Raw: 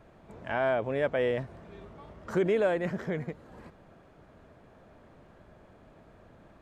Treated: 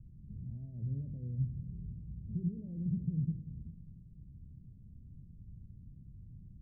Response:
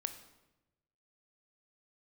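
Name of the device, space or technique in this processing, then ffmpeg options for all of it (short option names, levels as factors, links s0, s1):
club heard from the street: -filter_complex "[0:a]alimiter=level_in=1.26:limit=0.0631:level=0:latency=1,volume=0.794,lowpass=f=160:w=0.5412,lowpass=f=160:w=1.3066[s0];[1:a]atrim=start_sample=2205[s1];[s0][s1]afir=irnorm=-1:irlink=0,volume=2.99"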